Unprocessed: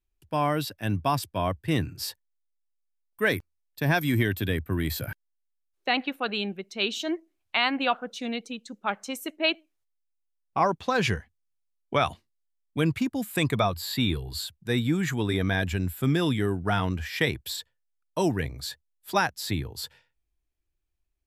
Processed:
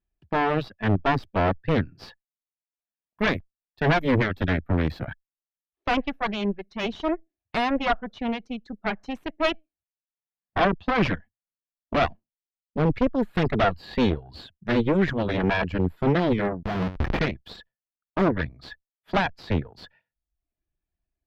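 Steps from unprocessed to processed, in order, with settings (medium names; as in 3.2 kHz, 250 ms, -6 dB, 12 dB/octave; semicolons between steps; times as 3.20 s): 12.10–12.95 s: median filter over 25 samples; reverb removal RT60 0.7 s; small resonant body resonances 200/660/1700 Hz, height 9 dB, ringing for 25 ms; 16.63–17.20 s: Schmitt trigger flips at -29 dBFS; Chebyshev shaper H 6 -9 dB, 7 -39 dB, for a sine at -6 dBFS; one-sided clip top -13.5 dBFS; distance through air 280 m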